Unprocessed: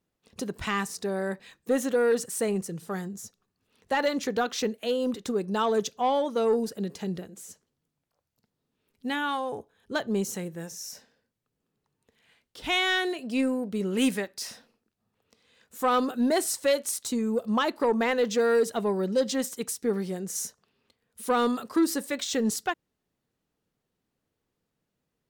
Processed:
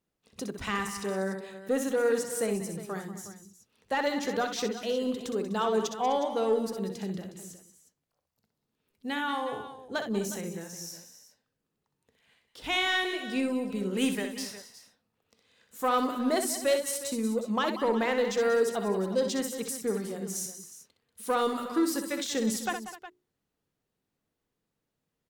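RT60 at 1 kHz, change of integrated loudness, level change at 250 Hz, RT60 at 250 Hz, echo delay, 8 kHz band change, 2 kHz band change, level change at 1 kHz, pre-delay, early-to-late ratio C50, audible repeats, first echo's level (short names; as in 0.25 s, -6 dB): none, -2.5 dB, -2.5 dB, none, 63 ms, -2.0 dB, -2.0 dB, -1.5 dB, none, none, 4, -7.5 dB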